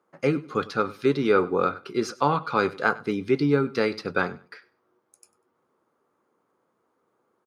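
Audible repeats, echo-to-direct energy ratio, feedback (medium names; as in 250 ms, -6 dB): 2, -20.0 dB, 21%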